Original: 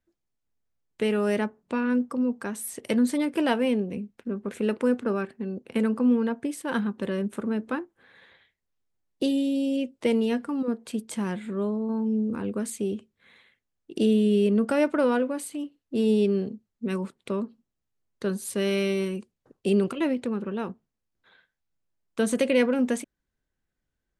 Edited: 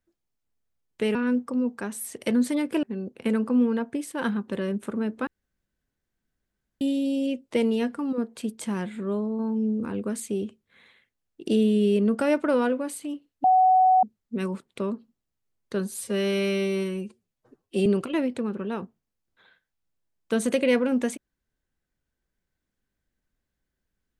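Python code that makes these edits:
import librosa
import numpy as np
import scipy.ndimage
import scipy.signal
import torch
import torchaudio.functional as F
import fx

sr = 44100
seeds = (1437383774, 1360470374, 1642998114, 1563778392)

y = fx.edit(x, sr, fx.cut(start_s=1.15, length_s=0.63),
    fx.cut(start_s=3.46, length_s=1.87),
    fx.room_tone_fill(start_s=7.77, length_s=1.54),
    fx.bleep(start_s=15.94, length_s=0.59, hz=747.0, db=-14.5),
    fx.stretch_span(start_s=18.47, length_s=1.26, factor=1.5), tone=tone)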